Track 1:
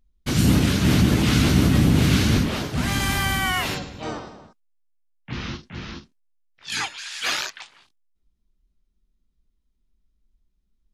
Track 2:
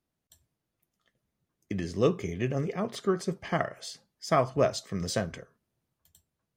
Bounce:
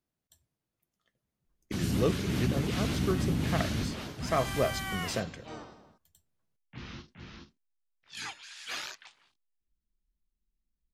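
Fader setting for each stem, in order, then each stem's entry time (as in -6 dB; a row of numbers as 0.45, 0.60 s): -13.0, -4.0 dB; 1.45, 0.00 s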